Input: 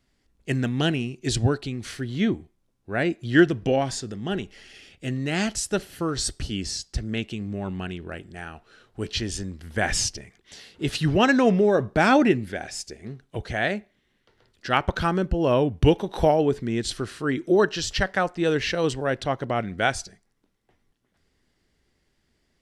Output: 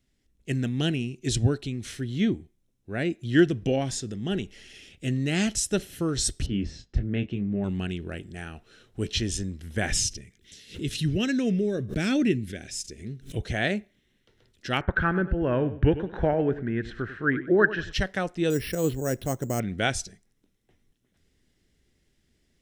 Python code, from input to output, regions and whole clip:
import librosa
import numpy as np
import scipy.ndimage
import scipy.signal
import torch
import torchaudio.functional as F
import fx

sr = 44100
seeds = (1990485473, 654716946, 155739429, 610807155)

y = fx.chain(x, sr, fx.lowpass(hz=1900.0, slope=12),
    fx.doubler(ms=25.0, db=-8), at=(6.46, 7.64))
y = fx.chain(y, sr, fx.peak_eq(hz=890.0, db=-14.0, octaves=1.2),
    fx.pre_swell(db_per_s=140.0), at=(9.99, 13.37))
y = fx.chain(y, sr, fx.lowpass_res(hz=1600.0, q=5.1),
    fx.echo_feedback(ms=97, feedback_pct=28, wet_db=-14.0), at=(14.81, 17.93))
y = fx.chain(y, sr, fx.lowpass(hz=1200.0, slope=6),
    fx.resample_bad(factor=6, down='none', up='hold'), at=(18.5, 19.6))
y = fx.peak_eq(y, sr, hz=1000.0, db=-10.0, octaves=1.7)
y = fx.notch(y, sr, hz=4600.0, q=8.6)
y = fx.rider(y, sr, range_db=3, speed_s=2.0)